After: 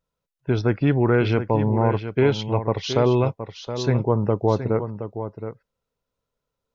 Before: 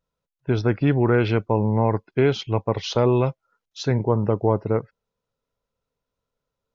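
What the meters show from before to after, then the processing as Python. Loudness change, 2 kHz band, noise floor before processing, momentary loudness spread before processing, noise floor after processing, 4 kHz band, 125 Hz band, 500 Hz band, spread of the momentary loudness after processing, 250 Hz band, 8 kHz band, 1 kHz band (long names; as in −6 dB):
0.0 dB, +0.5 dB, −85 dBFS, 7 LU, −83 dBFS, +0.5 dB, +0.5 dB, +0.5 dB, 13 LU, +0.5 dB, can't be measured, +0.5 dB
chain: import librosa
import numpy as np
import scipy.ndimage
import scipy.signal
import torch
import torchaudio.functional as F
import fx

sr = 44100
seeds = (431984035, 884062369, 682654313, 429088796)

y = x + 10.0 ** (-10.0 / 20.0) * np.pad(x, (int(720 * sr / 1000.0), 0))[:len(x)]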